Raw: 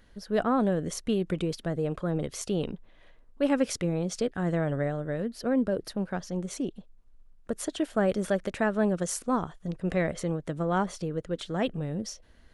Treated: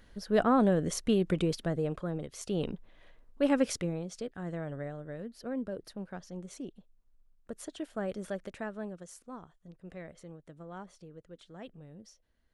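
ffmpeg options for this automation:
ffmpeg -i in.wav -af "volume=9dB,afade=type=out:start_time=1.51:duration=0.8:silence=0.298538,afade=type=in:start_time=2.31:duration=0.35:silence=0.375837,afade=type=out:start_time=3.66:duration=0.41:silence=0.375837,afade=type=out:start_time=8.44:duration=0.61:silence=0.398107" out.wav

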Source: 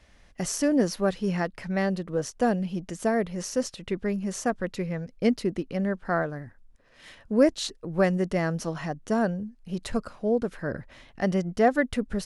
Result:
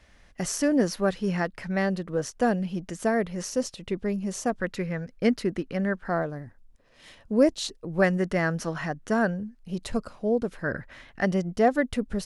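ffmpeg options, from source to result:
ffmpeg -i in.wav -af "asetnsamples=nb_out_samples=441:pad=0,asendcmd='3.5 equalizer g -4;4.6 equalizer g 6.5;6.09 equalizer g -4.5;8.02 equalizer g 6.5;9.59 equalizer g -3.5;10.64 equalizer g 7.5;11.25 equalizer g -2.5',equalizer=frequency=1600:width_type=o:width=0.85:gain=2.5" out.wav

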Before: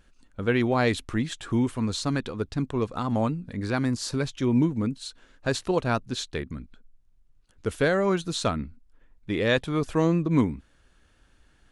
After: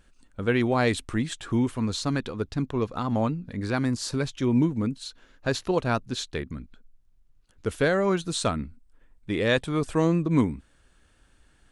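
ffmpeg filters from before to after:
ffmpeg -i in.wav -af "asetnsamples=nb_out_samples=441:pad=0,asendcmd='1.37 equalizer g -2;2.65 equalizer g -11;3.54 equalizer g 1;5.04 equalizer g -8.5;5.76 equalizer g 0;8.28 equalizer g 9',equalizer=frequency=8400:width_type=o:width=0.21:gain=7" out.wav

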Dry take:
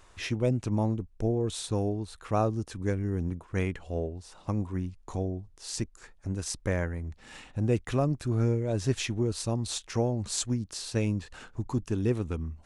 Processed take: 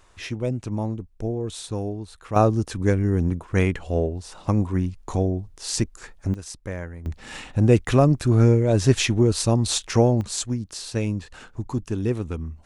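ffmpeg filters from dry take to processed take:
ffmpeg -i in.wav -af "asetnsamples=nb_out_samples=441:pad=0,asendcmd='2.36 volume volume 9dB;6.34 volume volume -3dB;7.06 volume volume 10dB;10.21 volume volume 3dB',volume=0.5dB" out.wav

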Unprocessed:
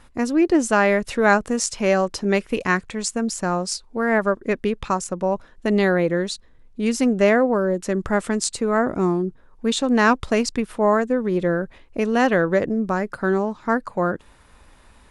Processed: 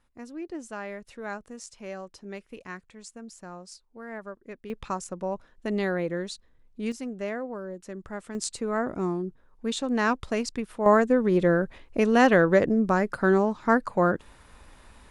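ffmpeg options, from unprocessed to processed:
ffmpeg -i in.wav -af "asetnsamples=nb_out_samples=441:pad=0,asendcmd='4.7 volume volume -9dB;6.92 volume volume -16dB;8.35 volume volume -8dB;10.86 volume volume -0.5dB',volume=-19.5dB" out.wav

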